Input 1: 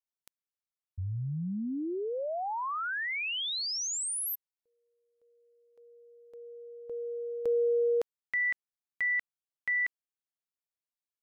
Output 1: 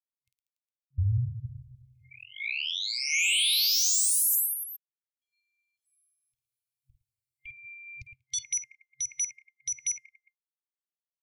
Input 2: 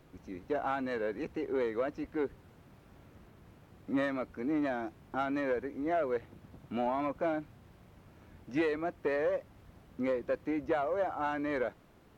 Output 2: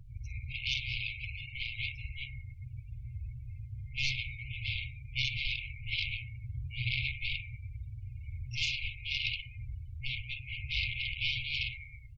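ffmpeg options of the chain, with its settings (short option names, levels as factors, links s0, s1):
-filter_complex "[0:a]asplit=2[s0][s1];[s1]acompressor=threshold=0.00631:ratio=20:attack=1.8:release=254:knee=1:detection=rms,volume=0.794[s2];[s0][s2]amix=inputs=2:normalize=0,bandreject=f=50:t=h:w=6,bandreject=f=100:t=h:w=6,bandreject=f=150:t=h:w=6,bandreject=f=200:t=h:w=6,bandreject=f=250:t=h:w=6,bandreject=f=300:t=h:w=6,bandreject=f=350:t=h:w=6,bandreject=f=400:t=h:w=6,bandreject=f=450:t=h:w=6,acrossover=split=130|2300[s3][s4][s5];[s3]crystalizer=i=7:c=0[s6];[s6][s4][s5]amix=inputs=3:normalize=0,acrusher=bits=10:mix=0:aa=0.000001,aecho=1:1:50|112.5|190.6|288.3|410.4:0.631|0.398|0.251|0.158|0.1,aeval=exprs='0.141*sin(PI/2*4.47*val(0)/0.141)':c=same,afftdn=nr=35:nf=-38,afftfilt=real='re*(1-between(b*sr/4096,130,2100))':imag='im*(1-between(b*sr/4096,130,2100))':win_size=4096:overlap=0.75,volume=0.596"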